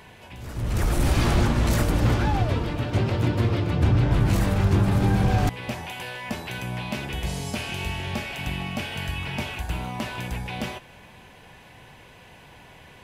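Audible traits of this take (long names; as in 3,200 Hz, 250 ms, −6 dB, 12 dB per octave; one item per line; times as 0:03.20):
background noise floor −49 dBFS
spectral slope −6.0 dB per octave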